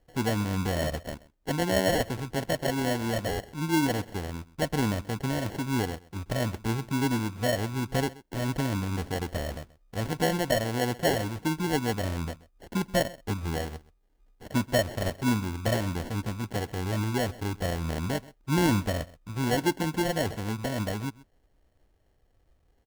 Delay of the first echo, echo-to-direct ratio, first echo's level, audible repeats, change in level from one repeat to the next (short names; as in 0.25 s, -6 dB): 0.13 s, -20.5 dB, -20.5 dB, 1, no steady repeat